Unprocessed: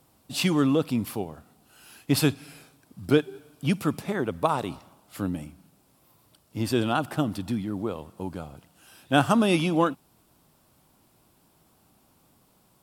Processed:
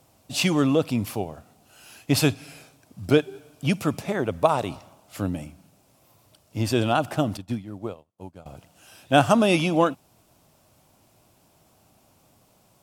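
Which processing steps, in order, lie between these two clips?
graphic EQ with 15 bands 100 Hz +6 dB, 630 Hz +7 dB, 2,500 Hz +4 dB, 6,300 Hz +6 dB
0:07.37–0:08.46: expander for the loud parts 2.5 to 1, over −48 dBFS

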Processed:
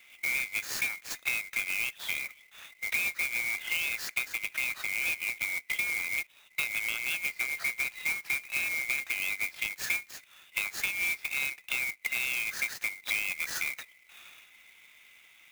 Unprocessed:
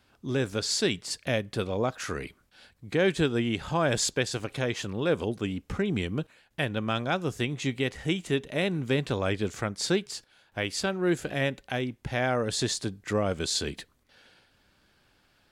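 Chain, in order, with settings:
neighbouring bands swapped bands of 2,000 Hz
high-pass filter 960 Hz 12 dB per octave
parametric band 2,400 Hz +12 dB 1.1 octaves
downward compressor 8 to 1, threshold −29 dBFS, peak gain reduction 19.5 dB
converter with an unsteady clock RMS 0.026 ms

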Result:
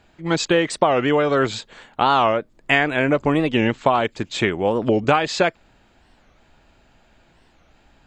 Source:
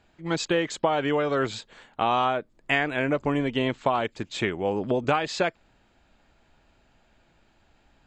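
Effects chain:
wow of a warped record 45 rpm, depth 250 cents
level +6.5 dB

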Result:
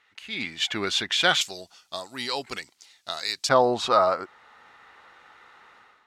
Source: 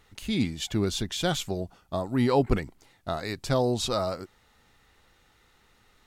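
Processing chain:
automatic gain control gain up to 13 dB
resonant band-pass 2,000 Hz, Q 1.2, from 0:01.41 5,200 Hz, from 0:03.49 1,200 Hz
level +3 dB

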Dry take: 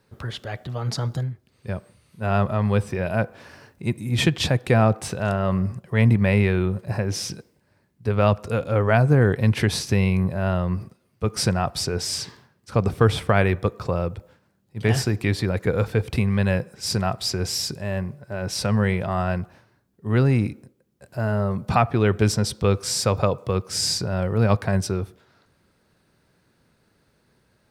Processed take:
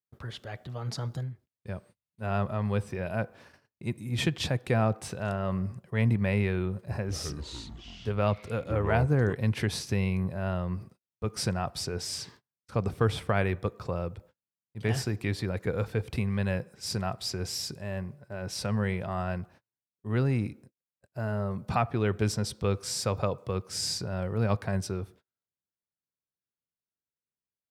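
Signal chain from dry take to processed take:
0:06.73–0:09.33: delay with pitch and tempo change per echo 176 ms, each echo −5 semitones, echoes 3, each echo −6 dB
noise gate −44 dBFS, range −33 dB
level −8 dB

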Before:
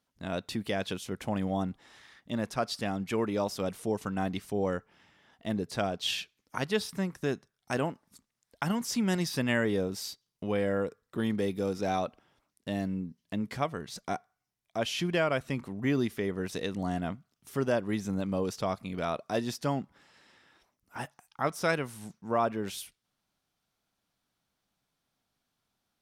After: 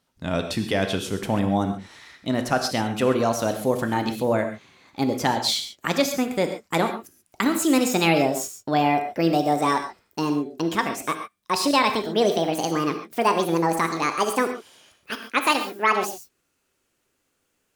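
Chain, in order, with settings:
gliding playback speed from 95% → 198%
reverb whose tail is shaped and stops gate 160 ms flat, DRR 6 dB
level +8 dB

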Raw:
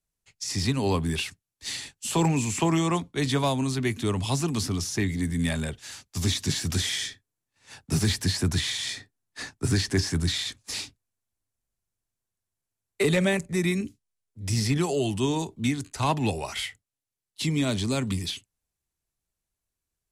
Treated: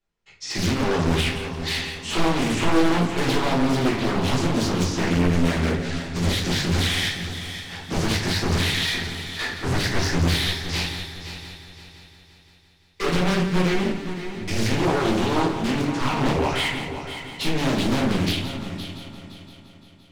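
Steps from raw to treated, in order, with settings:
low-pass filter 3,700 Hz 12 dB per octave
low-shelf EQ 140 Hz −11.5 dB
hum removal 138.6 Hz, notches 17
in parallel at +2.5 dB: output level in coarse steps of 13 dB
on the sum: brickwall limiter −18 dBFS, peak gain reduction 9.5 dB
wave folding −25 dBFS
on a send: echo machine with several playback heads 172 ms, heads first and third, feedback 53%, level −11.5 dB
on the sum: rectangular room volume 49 cubic metres, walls mixed, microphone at 1.2 metres
highs frequency-modulated by the lows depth 0.77 ms

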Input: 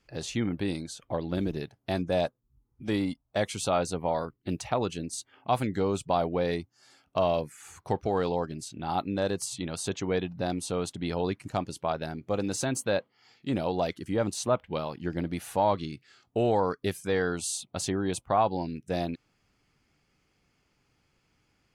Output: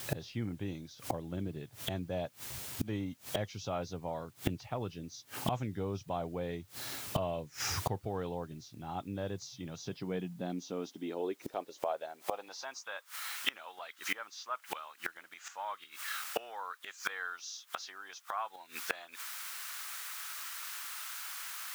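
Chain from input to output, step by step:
hearing-aid frequency compression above 2,900 Hz 1.5 to 1
in parallel at −6 dB: bit-depth reduction 8 bits, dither triangular
on the sum: high-pass filter sweep 100 Hz → 1,300 Hz, 0:09.54–0:13.09
gate with flip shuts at −29 dBFS, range −25 dB
level +10.5 dB

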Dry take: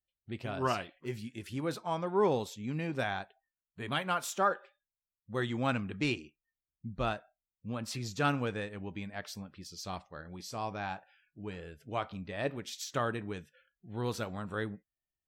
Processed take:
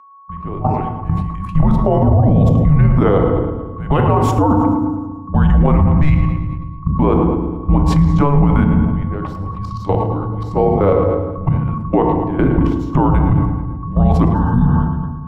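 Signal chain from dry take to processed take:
fade in at the beginning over 1.89 s
drawn EQ curve 1,100 Hz 0 dB, 1,600 Hz −10 dB, 5,000 Hz −26 dB
steady tone 1,400 Hz −56 dBFS
output level in coarse steps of 19 dB
echo with a time of its own for lows and highs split 540 Hz, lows 183 ms, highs 108 ms, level −14.5 dB
frequency shifter −290 Hz
dynamic equaliser 120 Hz, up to +4 dB, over −51 dBFS, Q 1.1
feedback delay network reverb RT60 1.2 s, low-frequency decay 1.4×, high-frequency decay 0.5×, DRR 7 dB
healed spectral selection 0:14.37–0:14.72, 310–3,400 Hz after
hum removal 69.4 Hz, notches 13
boost into a limiter +35 dB
level that may fall only so fast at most 43 dB per second
level −3.5 dB

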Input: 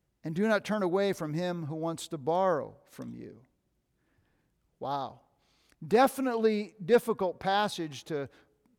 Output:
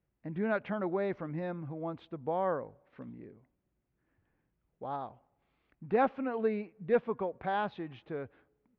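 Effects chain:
inverse Chebyshev low-pass filter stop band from 10,000 Hz, stop band 70 dB
level −4.5 dB

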